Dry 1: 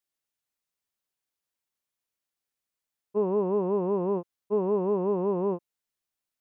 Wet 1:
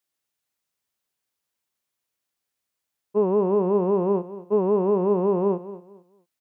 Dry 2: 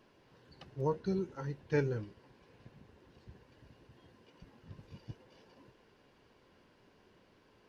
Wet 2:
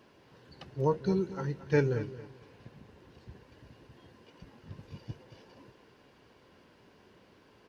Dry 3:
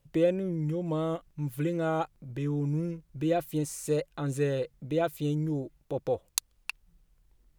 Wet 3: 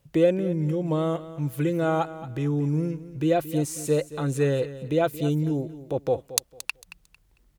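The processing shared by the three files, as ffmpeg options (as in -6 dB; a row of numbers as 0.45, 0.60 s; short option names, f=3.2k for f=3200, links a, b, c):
-filter_complex "[0:a]highpass=44,asplit=2[a][b];[b]aecho=0:1:225|450|675:0.178|0.0462|0.012[c];[a][c]amix=inputs=2:normalize=0,volume=5dB"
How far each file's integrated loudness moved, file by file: +5.0, +5.5, +5.0 LU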